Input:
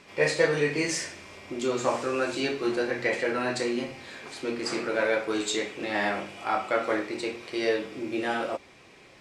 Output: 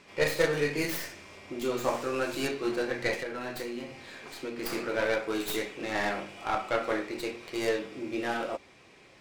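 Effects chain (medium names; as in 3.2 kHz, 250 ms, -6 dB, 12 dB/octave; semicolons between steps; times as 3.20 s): tracing distortion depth 0.2 ms; 3.14–4.58 s: compression, threshold -30 dBFS, peak gain reduction 7.5 dB; trim -3 dB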